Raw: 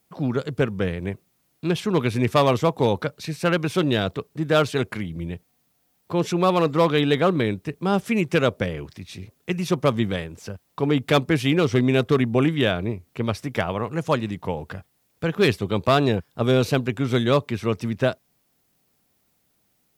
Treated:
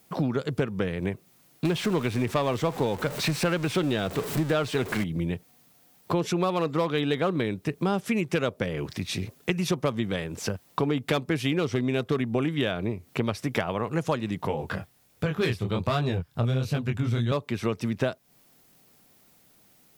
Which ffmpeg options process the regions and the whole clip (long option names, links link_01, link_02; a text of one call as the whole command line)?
ffmpeg -i in.wav -filter_complex "[0:a]asettb=1/sr,asplit=3[link_01][link_02][link_03];[link_01]atrim=end=1.654[link_04];[link_02]atrim=start=1.65:end=5.04,asetpts=PTS-STARTPTS,afade=type=in:duration=0.004:curve=qsin,afade=type=out:start_time=3.386:duration=0.004:curve=qsin,aeval=exprs='val(0)+0.5*0.0376*sgn(val(0))':channel_layout=same,acrossover=split=4200[link_05][link_06];[link_06]acompressor=threshold=-38dB:ratio=4:attack=1:release=60[link_07];[link_05][link_07]amix=inputs=2:normalize=0,equalizer=frequency=8000:width_type=o:width=0.28:gain=3[link_08];[link_03]atrim=start=5.036[link_09];[link_04][link_08]acrossfade=duration=0.004:curve1=hsin:curve2=qsin[link_10];[link_10][link_09]acrossfade=duration=0.004:curve1=qsin:curve2=hsin,asettb=1/sr,asplit=3[link_11][link_12][link_13];[link_11]atrim=end=14.474[link_14];[link_12]atrim=start=14.47:end=17.32,asetpts=PTS-STARTPTS,afade=type=in:duration=0.004:curve=qsin,afade=type=out:start_time=2.846:duration=0.004:curve=qsin,asubboost=boost=8:cutoff=140,flanger=delay=19.5:depth=6.9:speed=1.3[link_15];[link_13]atrim=start=17.316[link_16];[link_14][link_15]acrossfade=duration=0.004:curve1=hsin:curve2=qsin[link_17];[link_17][link_16]acrossfade=duration=0.004:curve1=qsin:curve2=hsin,acompressor=threshold=-32dB:ratio=6,equalizer=frequency=62:width=2.5:gain=-14.5,volume=8.5dB" out.wav